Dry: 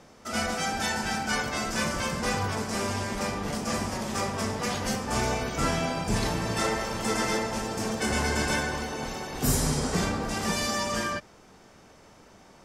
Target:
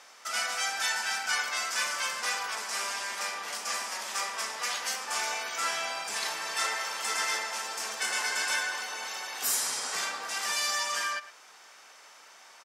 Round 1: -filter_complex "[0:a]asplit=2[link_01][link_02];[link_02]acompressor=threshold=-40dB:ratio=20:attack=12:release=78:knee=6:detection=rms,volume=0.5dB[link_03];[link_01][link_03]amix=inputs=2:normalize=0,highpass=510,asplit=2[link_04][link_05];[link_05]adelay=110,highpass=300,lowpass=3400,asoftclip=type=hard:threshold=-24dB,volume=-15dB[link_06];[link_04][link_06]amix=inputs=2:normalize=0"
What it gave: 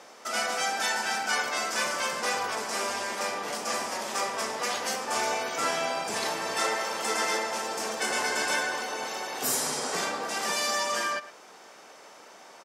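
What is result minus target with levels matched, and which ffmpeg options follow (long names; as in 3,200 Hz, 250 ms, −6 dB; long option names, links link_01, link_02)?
500 Hz band +9.5 dB
-filter_complex "[0:a]asplit=2[link_01][link_02];[link_02]acompressor=threshold=-40dB:ratio=20:attack=12:release=78:knee=6:detection=rms,volume=0.5dB[link_03];[link_01][link_03]amix=inputs=2:normalize=0,highpass=1200,asplit=2[link_04][link_05];[link_05]adelay=110,highpass=300,lowpass=3400,asoftclip=type=hard:threshold=-24dB,volume=-15dB[link_06];[link_04][link_06]amix=inputs=2:normalize=0"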